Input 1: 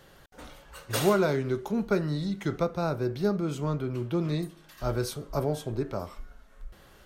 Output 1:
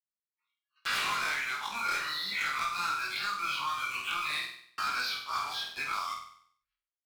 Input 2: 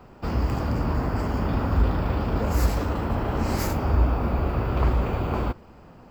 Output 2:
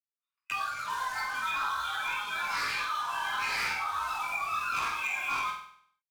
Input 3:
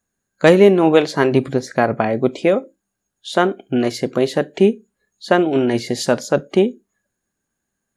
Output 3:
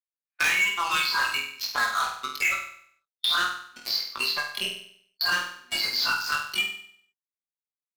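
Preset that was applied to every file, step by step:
peak hold with a rise ahead of every peak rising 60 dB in 0.32 s
noise reduction from a noise print of the clip's start 28 dB
noise gate −41 dBFS, range −37 dB
elliptic band-pass filter 1,100–4,800 Hz, stop band 40 dB
parametric band 2,400 Hz +8 dB 0.27 octaves
leveller curve on the samples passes 5
downward compressor 1.5 to 1, threshold −25 dBFS
pitch vibrato 1.5 Hz 13 cents
chorus effect 1.2 Hz, delay 20 ms, depth 2.4 ms
gain into a clipping stage and back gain 15.5 dB
flutter between parallel walls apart 8.3 metres, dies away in 0.49 s
multiband upward and downward compressor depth 70%
level −4.5 dB

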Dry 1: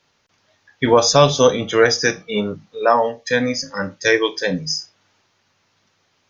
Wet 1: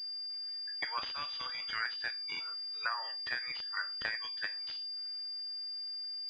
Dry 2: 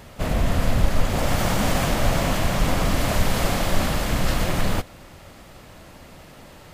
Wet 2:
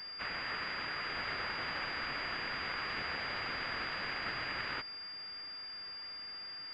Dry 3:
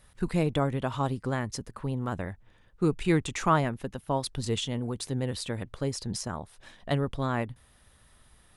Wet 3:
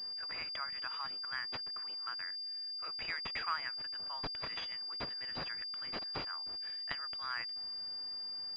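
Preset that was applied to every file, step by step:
sub-octave generator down 1 octave, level +1 dB
high-pass filter 1,500 Hz 24 dB per octave
downward compressor 16 to 1, threshold −32 dBFS
switching amplifier with a slow clock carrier 4,800 Hz
level +1.5 dB

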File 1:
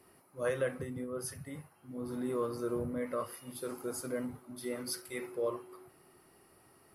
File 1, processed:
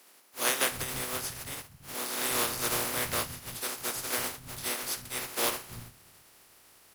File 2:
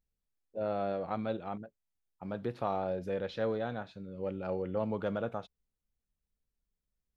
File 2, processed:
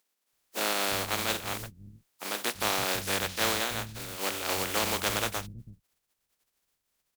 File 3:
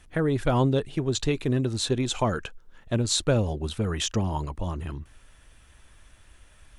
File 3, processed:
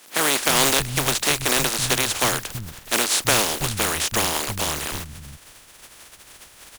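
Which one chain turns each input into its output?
compressing power law on the bin magnitudes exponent 0.23
asymmetric clip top −18.5 dBFS
multiband delay without the direct sound highs, lows 330 ms, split 190 Hz
level +5 dB

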